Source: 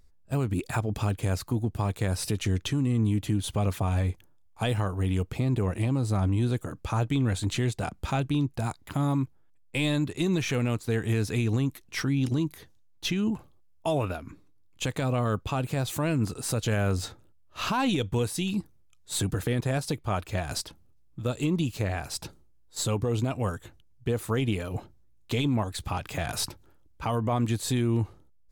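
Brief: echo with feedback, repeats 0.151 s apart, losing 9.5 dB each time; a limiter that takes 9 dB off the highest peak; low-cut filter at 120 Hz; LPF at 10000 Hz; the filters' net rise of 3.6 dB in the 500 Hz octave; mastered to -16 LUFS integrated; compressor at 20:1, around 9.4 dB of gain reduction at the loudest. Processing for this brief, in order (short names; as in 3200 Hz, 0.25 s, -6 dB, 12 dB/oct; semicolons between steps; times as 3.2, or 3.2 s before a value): HPF 120 Hz; LPF 10000 Hz; bell 500 Hz +4.5 dB; compressor 20:1, threshold -30 dBFS; limiter -26 dBFS; feedback echo 0.151 s, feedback 33%, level -9.5 dB; gain +21.5 dB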